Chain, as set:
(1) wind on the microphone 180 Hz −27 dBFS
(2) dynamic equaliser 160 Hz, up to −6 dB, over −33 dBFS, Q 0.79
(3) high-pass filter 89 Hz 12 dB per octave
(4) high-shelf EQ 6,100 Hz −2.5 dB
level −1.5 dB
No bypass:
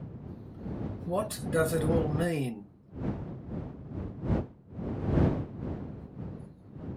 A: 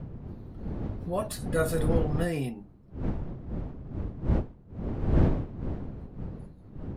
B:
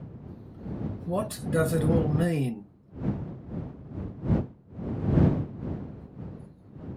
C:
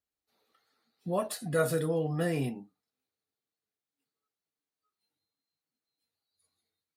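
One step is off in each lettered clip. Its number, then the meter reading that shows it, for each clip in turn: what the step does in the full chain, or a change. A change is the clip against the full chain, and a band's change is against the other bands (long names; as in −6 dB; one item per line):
3, 125 Hz band +2.0 dB
2, change in momentary loudness spread +3 LU
1, 125 Hz band −5.5 dB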